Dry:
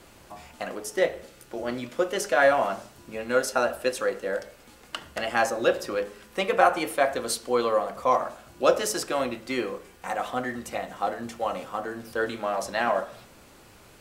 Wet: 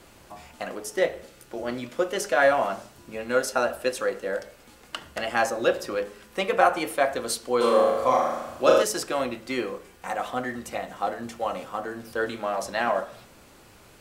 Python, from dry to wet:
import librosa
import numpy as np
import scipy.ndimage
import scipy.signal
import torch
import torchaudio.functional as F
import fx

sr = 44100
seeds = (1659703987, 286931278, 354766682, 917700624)

y = fx.room_flutter(x, sr, wall_m=6.6, rt60_s=1.0, at=(7.6, 8.82), fade=0.02)